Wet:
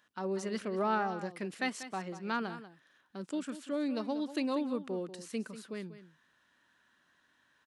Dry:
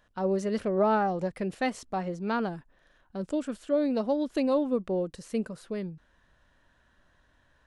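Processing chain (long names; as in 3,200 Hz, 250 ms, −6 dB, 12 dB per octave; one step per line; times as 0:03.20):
high-pass filter 270 Hz 12 dB per octave
parametric band 580 Hz −11 dB 1.2 octaves
on a send: single-tap delay 190 ms −13 dB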